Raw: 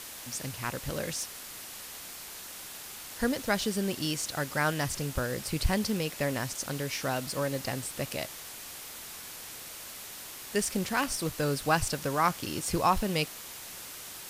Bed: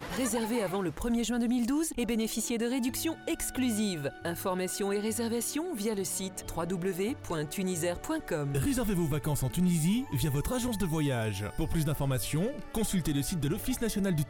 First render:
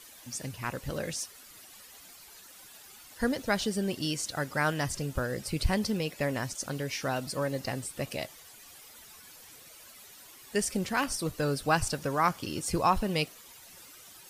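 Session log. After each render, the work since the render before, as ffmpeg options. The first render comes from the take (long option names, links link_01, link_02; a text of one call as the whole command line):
ffmpeg -i in.wav -af "afftdn=noise_reduction=12:noise_floor=-44" out.wav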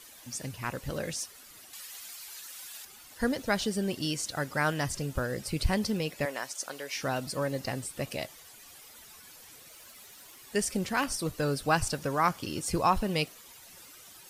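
ffmpeg -i in.wav -filter_complex "[0:a]asettb=1/sr,asplit=3[link_01][link_02][link_03];[link_01]atrim=end=1.734[link_04];[link_02]atrim=start=1.73:end=2.85,asetpts=PTS-STARTPTS,afade=type=in:duration=0.004:curve=qsin,afade=type=out:start_time=1.116:duration=0.004:curve=qsin,tiltshelf=frequency=840:gain=-7.5[link_05];[link_03]atrim=start=2.846[link_06];[link_04][link_05]acrossfade=duration=0.004:curve1=hsin:curve2=qsin[link_07];[link_07][link_06]acrossfade=duration=0.004:curve1=qsin:curve2=hsin,asettb=1/sr,asplit=3[link_08][link_09][link_10];[link_08]atrim=end=6.254[link_11];[link_09]atrim=start=6.25:end=6.96,asetpts=PTS-STARTPTS,afade=type=in:duration=0.004:curve=qsin,afade=type=out:start_time=0.706:duration=0.004:curve=qsin,highpass=510[link_12];[link_10]atrim=start=6.956[link_13];[link_11][link_12]acrossfade=duration=0.004:curve1=hsin:curve2=qsin[link_14];[link_14][link_13]acrossfade=duration=0.004:curve1=qsin:curve2=hsin,asettb=1/sr,asplit=3[link_15][link_16][link_17];[link_15]atrim=end=9.704[link_18];[link_16]atrim=start=9.7:end=10.41,asetpts=PTS-STARTPTS,afade=type=in:duration=0.004:curve=qsin,afade=type=out:start_time=0.706:duration=0.004:curve=qsin,acrusher=bits=3:mode=log:mix=0:aa=0.000001[link_19];[link_17]atrim=start=10.406[link_20];[link_18][link_19]acrossfade=duration=0.004:curve1=hsin:curve2=qsin[link_21];[link_21][link_20]acrossfade=duration=0.004:curve1=qsin:curve2=hsin" out.wav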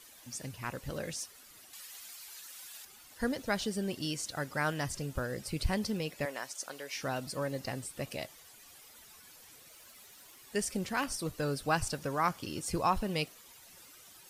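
ffmpeg -i in.wav -af "volume=-4dB" out.wav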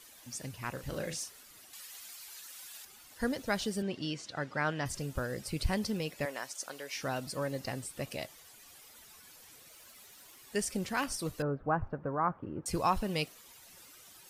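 ffmpeg -i in.wav -filter_complex "[0:a]asettb=1/sr,asplit=3[link_01][link_02][link_03];[link_01]atrim=end=0.734[link_04];[link_02]atrim=start=0.73:end=1.43,asetpts=PTS-STARTPTS,afade=type=in:duration=0.004:curve=qsin,afade=type=out:start_time=0.696:duration=0.004:curve=qsin,asplit=2[link_05][link_06];[link_06]adelay=38,volume=-7dB[link_07];[link_05][link_07]amix=inputs=2:normalize=0,atrim=end_sample=30870[link_08];[link_03]atrim=start=1.426[link_09];[link_04][link_08]acrossfade=duration=0.004:curve1=hsin:curve2=qsin[link_10];[link_10][link_09]acrossfade=duration=0.004:curve1=qsin:curve2=hsin,asettb=1/sr,asplit=3[link_11][link_12][link_13];[link_11]atrim=end=3.824[link_14];[link_12]atrim=start=3.82:end=4.86,asetpts=PTS-STARTPTS,afade=type=in:duration=0.004:curve=qsin,afade=type=out:start_time=1.036:duration=0.004:curve=qsin,highpass=100,lowpass=4200[link_15];[link_13]atrim=start=4.856[link_16];[link_14][link_15]acrossfade=duration=0.004:curve1=hsin:curve2=qsin[link_17];[link_17][link_16]acrossfade=duration=0.004:curve1=qsin:curve2=hsin,asettb=1/sr,asplit=3[link_18][link_19][link_20];[link_18]atrim=end=11.424[link_21];[link_19]atrim=start=11.42:end=12.66,asetpts=PTS-STARTPTS,afade=type=in:duration=0.004:curve=qsin,afade=type=out:start_time=1.236:duration=0.004:curve=qsin,lowpass=frequency=1400:width=0.5412,lowpass=frequency=1400:width=1.3066[link_22];[link_20]atrim=start=12.656[link_23];[link_21][link_22]acrossfade=duration=0.004:curve1=hsin:curve2=qsin[link_24];[link_24][link_23]acrossfade=duration=0.004:curve1=qsin:curve2=hsin" out.wav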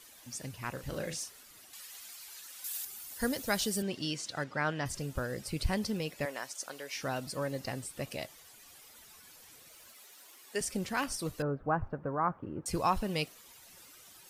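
ffmpeg -i in.wav -filter_complex "[0:a]asettb=1/sr,asplit=3[link_01][link_02][link_03];[link_01]atrim=end=2.644[link_04];[link_02]atrim=start=2.64:end=4.44,asetpts=PTS-STARTPTS,afade=type=in:duration=0.004:curve=qsin,afade=type=out:start_time=1.796:duration=0.004:curve=qsin,aemphasis=mode=production:type=50kf[link_05];[link_03]atrim=start=4.436[link_06];[link_04][link_05]acrossfade=duration=0.004:curve1=hsin:curve2=qsin[link_07];[link_07][link_06]acrossfade=duration=0.004:curve1=qsin:curve2=hsin,asettb=1/sr,asplit=3[link_08][link_09][link_10];[link_08]atrim=end=9.934[link_11];[link_09]atrim=start=9.93:end=10.61,asetpts=PTS-STARTPTS,afade=type=in:duration=0.004:curve=qsin,afade=type=out:start_time=0.676:duration=0.004:curve=qsin,highpass=310[link_12];[link_10]atrim=start=10.606[link_13];[link_11][link_12]acrossfade=duration=0.004:curve1=hsin:curve2=qsin[link_14];[link_14][link_13]acrossfade=duration=0.004:curve1=qsin:curve2=hsin" out.wav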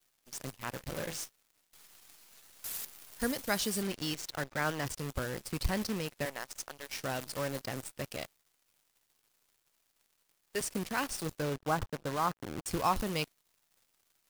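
ffmpeg -i in.wav -af "acrusher=bits=7:dc=4:mix=0:aa=0.000001,aeval=exprs='sgn(val(0))*max(abs(val(0))-0.00316,0)':channel_layout=same" out.wav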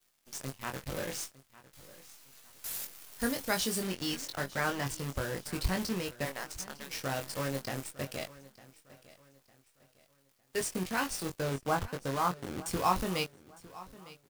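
ffmpeg -i in.wav -filter_complex "[0:a]asplit=2[link_01][link_02];[link_02]adelay=22,volume=-5dB[link_03];[link_01][link_03]amix=inputs=2:normalize=0,aecho=1:1:905|1810|2715:0.112|0.0404|0.0145" out.wav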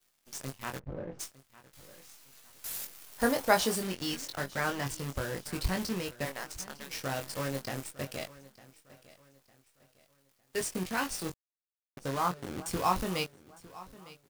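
ffmpeg -i in.wav -filter_complex "[0:a]asplit=3[link_01][link_02][link_03];[link_01]afade=type=out:start_time=0.78:duration=0.02[link_04];[link_02]adynamicsmooth=sensitivity=0.5:basefreq=670,afade=type=in:start_time=0.78:duration=0.02,afade=type=out:start_time=1.19:duration=0.02[link_05];[link_03]afade=type=in:start_time=1.19:duration=0.02[link_06];[link_04][link_05][link_06]amix=inputs=3:normalize=0,asettb=1/sr,asplit=3[link_07][link_08][link_09];[link_07]atrim=end=3.184[link_10];[link_08]atrim=start=3.18:end=3.76,asetpts=PTS-STARTPTS,afade=type=in:duration=0.004:curve=qsin,afade=type=out:start_time=0.576:duration=0.004:curve=qsin,equalizer=frequency=760:width=0.66:gain=10.5[link_11];[link_09]atrim=start=3.756[link_12];[link_10][link_11]acrossfade=duration=0.004:curve1=hsin:curve2=qsin[link_13];[link_13][link_12]acrossfade=duration=0.004:curve1=qsin:curve2=hsin,asplit=3[link_14][link_15][link_16];[link_14]atrim=end=11.34,asetpts=PTS-STARTPTS,afade=type=out:start_time=11.336:duration=0.004:curve=hsin[link_17];[link_15]atrim=start=11.34:end=11.97,asetpts=PTS-STARTPTS,volume=0[link_18];[link_16]atrim=start=11.97,asetpts=PTS-STARTPTS,afade=type=in:duration=0.004:curve=hsin[link_19];[link_17][link_18][link_19]concat=n=3:v=0:a=1" out.wav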